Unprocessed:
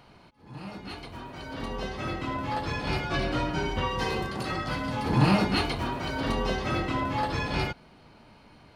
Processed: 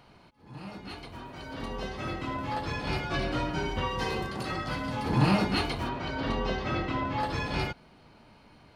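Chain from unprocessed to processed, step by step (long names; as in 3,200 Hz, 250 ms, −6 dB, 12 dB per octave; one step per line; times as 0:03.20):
0:05.89–0:07.20: low-pass filter 5,000 Hz 12 dB per octave
level −2 dB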